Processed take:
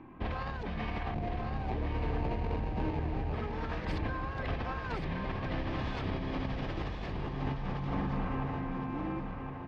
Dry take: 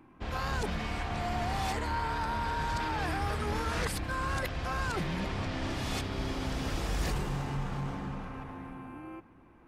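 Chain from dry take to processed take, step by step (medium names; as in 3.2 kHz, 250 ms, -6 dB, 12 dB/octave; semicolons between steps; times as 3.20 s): 1.14–3.34 s: median filter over 41 samples; peaking EQ 8.4 kHz -10.5 dB 1.1 oct; band-stop 1.4 kHz, Q 8.9; compressor with a negative ratio -38 dBFS, ratio -1; distance through air 180 m; feedback delay 1065 ms, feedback 27%, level -6 dB; trim +3 dB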